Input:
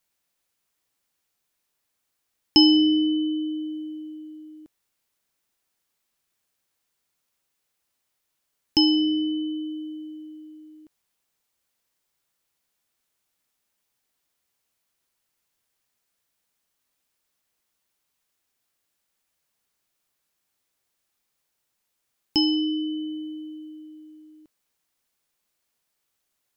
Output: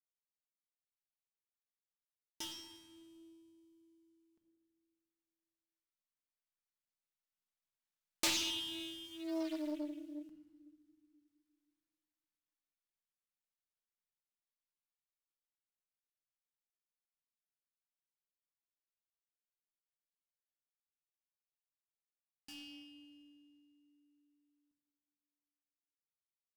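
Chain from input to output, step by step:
gap after every zero crossing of 0.071 ms
source passing by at 0:09.54, 21 m/s, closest 3.7 metres
parametric band 400 Hz −8 dB 1.4 octaves
rectangular room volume 2,000 cubic metres, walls mixed, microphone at 1.5 metres
highs frequency-modulated by the lows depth 0.61 ms
level +7.5 dB

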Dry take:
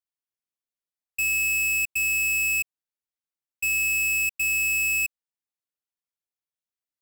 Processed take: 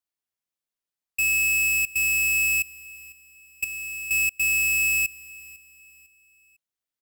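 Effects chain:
0:03.64–0:04.11: hard clipping −35.5 dBFS, distortion −10 dB
on a send: repeating echo 501 ms, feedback 37%, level −20.5 dB
on the sum: level +2 dB

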